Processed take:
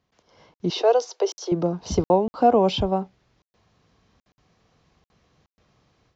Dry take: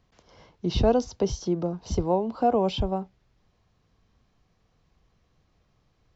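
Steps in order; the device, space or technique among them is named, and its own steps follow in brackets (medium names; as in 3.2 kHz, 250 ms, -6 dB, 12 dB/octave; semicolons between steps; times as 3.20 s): call with lost packets (high-pass 140 Hz 6 dB/octave; resampled via 16 kHz; level rider gain up to 11.5 dB; lost packets of 60 ms random); 0.70–1.52 s: steep high-pass 370 Hz 48 dB/octave; trim -4 dB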